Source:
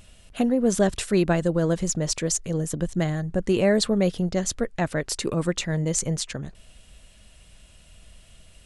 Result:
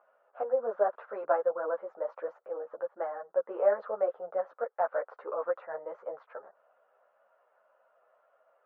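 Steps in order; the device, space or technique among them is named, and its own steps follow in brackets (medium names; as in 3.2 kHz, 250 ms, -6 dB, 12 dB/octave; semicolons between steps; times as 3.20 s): Chebyshev band-pass 520–1400 Hz, order 3; string-machine ensemble chorus (three-phase chorus; low-pass 4.9 kHz); trim +3 dB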